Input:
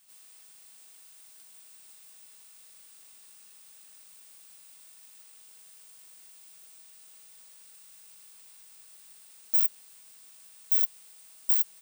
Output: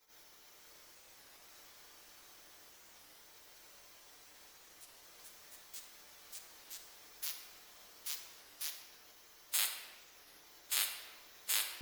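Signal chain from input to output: band-stop 5.8 kHz, Q 5; spectral gate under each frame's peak -30 dB weak; ten-band graphic EQ 125 Hz -6 dB, 250 Hz -4 dB, 4 kHz +3 dB; ever faster or slower copies 484 ms, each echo +6 st, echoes 3, each echo -6 dB; on a send at -2 dB: resonant low shelf 210 Hz -14 dB, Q 1.5 + reverberation RT60 1.6 s, pre-delay 7 ms; on the sum: warped record 33 1/3 rpm, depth 160 cents; trim +11 dB

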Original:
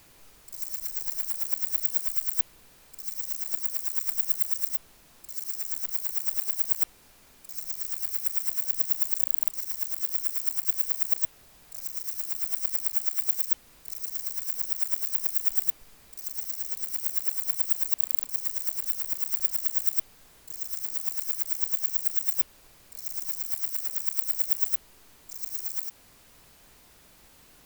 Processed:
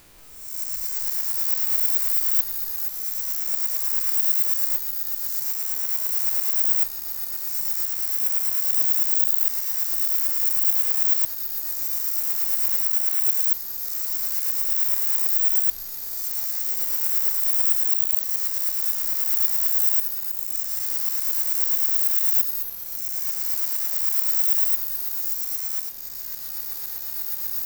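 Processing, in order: reverse spectral sustain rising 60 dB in 0.94 s; ever faster or slower copies 182 ms, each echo -2 st, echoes 3, each echo -6 dB; trim +1 dB

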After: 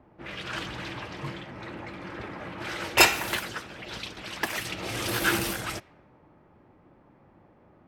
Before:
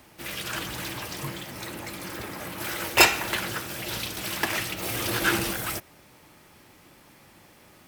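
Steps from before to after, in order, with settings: level-controlled noise filter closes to 860 Hz, open at -24 dBFS; 3.39–4.65 s: harmonic-percussive split harmonic -10 dB; trim -1 dB

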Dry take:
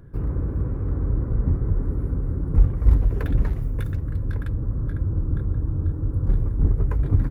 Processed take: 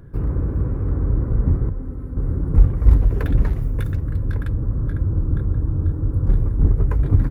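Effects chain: 1.69–2.17 s: feedback comb 260 Hz, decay 0.17 s, harmonics all, mix 70%; trim +3.5 dB

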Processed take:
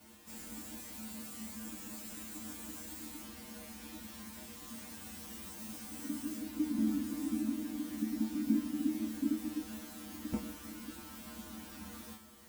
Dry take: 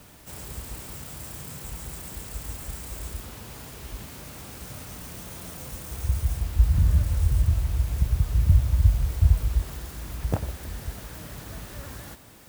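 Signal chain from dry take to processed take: peaking EQ 330 Hz -7 dB 0.8 oct; feedback comb 140 Hz, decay 0.28 s, harmonics all, mix 100%; frequency shift -360 Hz; trim +4 dB

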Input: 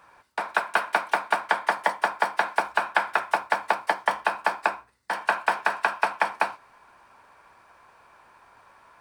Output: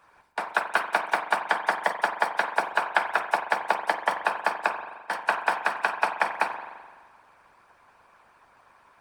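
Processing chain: spring tank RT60 1.5 s, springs 42 ms, chirp 55 ms, DRR 4.5 dB; harmonic-percussive split harmonic -11 dB

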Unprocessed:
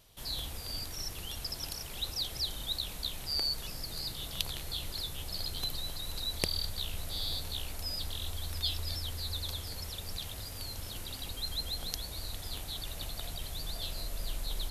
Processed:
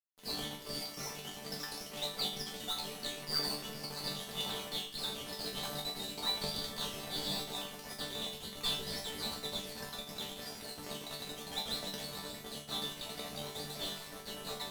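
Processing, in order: random holes in the spectrogram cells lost 23%; high-pass 160 Hz 12 dB/octave; treble shelf 4.2 kHz -11.5 dB; band-stop 1.5 kHz, Q 7.7; in parallel at -6 dB: decimation with a swept rate 26×, swing 100% 1.7 Hz; on the sum: fuzz box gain 39 dB, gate -48 dBFS; chord resonator D3 sus4, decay 0.36 s; two-band feedback delay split 1.2 kHz, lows 300 ms, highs 82 ms, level -14.5 dB; on a send at -12.5 dB: reverberation RT60 0.65 s, pre-delay 4 ms; on the sum: trim -1 dB

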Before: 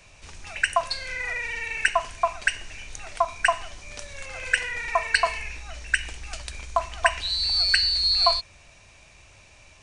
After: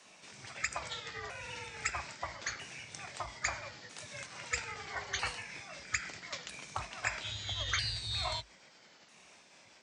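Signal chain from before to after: sawtooth pitch modulation -5 st, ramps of 1298 ms; spectral gate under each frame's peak -10 dB weak; frequency shift +51 Hz; trim -3 dB

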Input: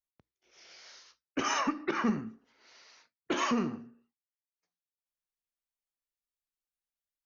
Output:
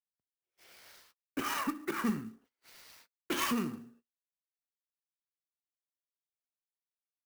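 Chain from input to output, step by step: treble shelf 3.8 kHz -3.5 dB, from 2.04 s +9 dB; gate -59 dBFS, range -26 dB; dynamic bell 640 Hz, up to -8 dB, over -49 dBFS, Q 1.5; sampling jitter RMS 0.032 ms; trim -2 dB

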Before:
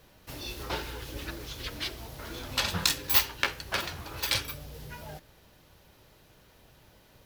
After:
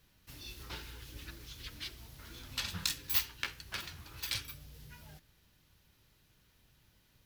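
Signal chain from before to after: peaking EQ 600 Hz -11.5 dB 1.8 oct; trim -7.5 dB

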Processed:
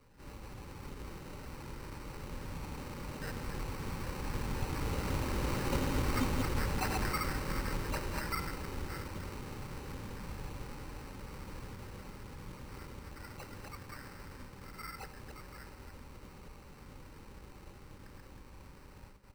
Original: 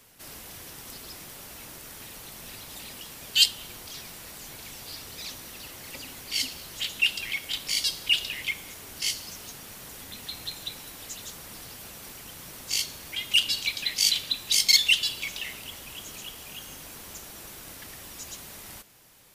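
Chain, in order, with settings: chunks repeated in reverse 142 ms, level -2 dB; Doppler pass-by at 5.95 s, 15 m/s, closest 18 m; inverse Chebyshev low-pass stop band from 4.9 kHz, stop band 60 dB; bass shelf 83 Hz +11 dB; on a send at -12.5 dB: reverberation RT60 0.65 s, pre-delay 81 ms; on the sum: sample-and-hold 13×; Butterworth band-stop 680 Hz, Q 4.9; trim +11.5 dB

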